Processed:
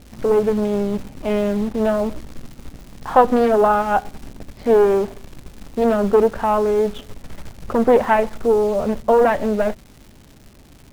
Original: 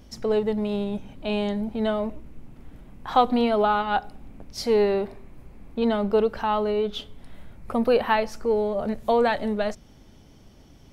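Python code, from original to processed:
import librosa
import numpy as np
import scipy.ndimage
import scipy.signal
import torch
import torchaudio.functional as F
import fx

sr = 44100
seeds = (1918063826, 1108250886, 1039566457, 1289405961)

p1 = scipy.signal.sosfilt(scipy.signal.butter(4, 2800.0, 'lowpass', fs=sr, output='sos'), x)
p2 = fx.high_shelf(p1, sr, hz=2100.0, db=-9.0)
p3 = fx.dmg_crackle(p2, sr, seeds[0], per_s=450.0, level_db=-42.0)
p4 = fx.quant_dither(p3, sr, seeds[1], bits=6, dither='none')
p5 = p3 + (p4 * librosa.db_to_amplitude(-9.0))
p6 = fx.doppler_dist(p5, sr, depth_ms=0.5)
y = p6 * librosa.db_to_amplitude(4.5)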